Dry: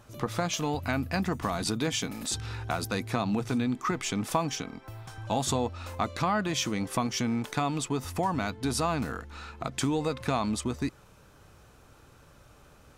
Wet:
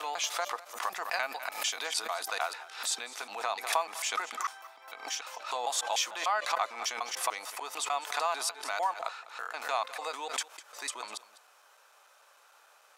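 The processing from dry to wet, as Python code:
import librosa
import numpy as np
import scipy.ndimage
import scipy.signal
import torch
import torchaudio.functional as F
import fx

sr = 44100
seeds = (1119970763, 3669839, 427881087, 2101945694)

y = fx.block_reorder(x, sr, ms=149.0, group=5)
y = scipy.signal.sosfilt(scipy.signal.butter(4, 660.0, 'highpass', fs=sr, output='sos'), y)
y = y + 10.0 ** (-18.0 / 20.0) * np.pad(y, (int(201 * sr / 1000.0), 0))[:len(y)]
y = fx.pre_swell(y, sr, db_per_s=110.0)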